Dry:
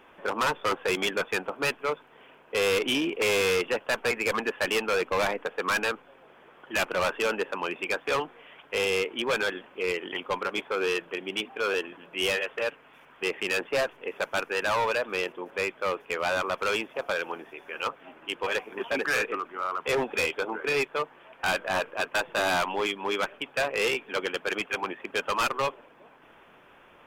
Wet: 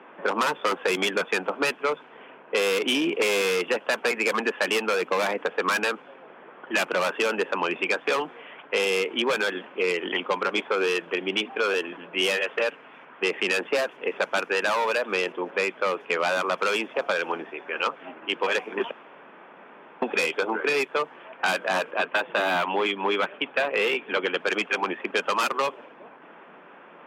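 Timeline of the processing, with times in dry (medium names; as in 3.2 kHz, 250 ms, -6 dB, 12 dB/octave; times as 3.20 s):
18.91–20.02 s: room tone
21.91–24.40 s: high-order bell 7.6 kHz -11 dB
whole clip: steep high-pass 160 Hz 48 dB/octave; level-controlled noise filter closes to 2 kHz, open at -22 dBFS; compression, threshold -28 dBFS; trim +7.5 dB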